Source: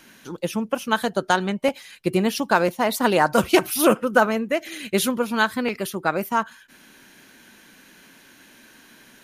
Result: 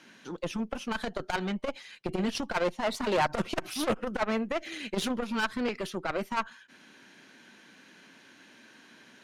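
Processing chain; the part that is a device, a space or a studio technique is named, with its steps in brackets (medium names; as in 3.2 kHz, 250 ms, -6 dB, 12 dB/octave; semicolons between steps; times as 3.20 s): valve radio (band-pass 130–5800 Hz; valve stage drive 19 dB, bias 0.7; transformer saturation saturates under 210 Hz)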